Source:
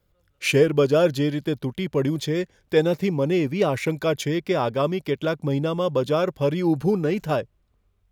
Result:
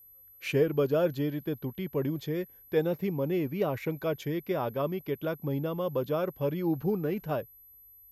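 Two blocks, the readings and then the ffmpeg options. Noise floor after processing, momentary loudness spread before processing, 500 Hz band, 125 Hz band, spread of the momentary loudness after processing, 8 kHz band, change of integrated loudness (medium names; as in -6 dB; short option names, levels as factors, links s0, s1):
-55 dBFS, 8 LU, -8.0 dB, -7.5 dB, 8 LU, under -15 dB, -8.0 dB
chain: -af "highshelf=f=3100:g=-10.5,aeval=exprs='val(0)+0.00562*sin(2*PI*12000*n/s)':c=same,volume=0.422"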